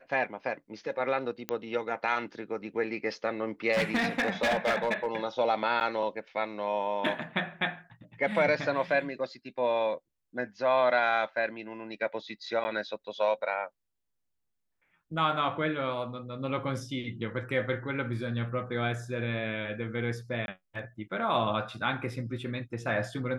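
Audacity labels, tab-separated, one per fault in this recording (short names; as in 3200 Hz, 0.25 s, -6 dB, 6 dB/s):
1.490000	1.490000	pop -15 dBFS
3.720000	5.170000	clipped -22.5 dBFS
5.800000	5.810000	gap 8.8 ms
12.640000	12.650000	gap 10 ms
20.460000	20.480000	gap 21 ms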